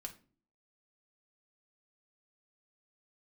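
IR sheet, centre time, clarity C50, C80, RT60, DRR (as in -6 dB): 8 ms, 14.0 dB, 19.5 dB, 0.40 s, 3.0 dB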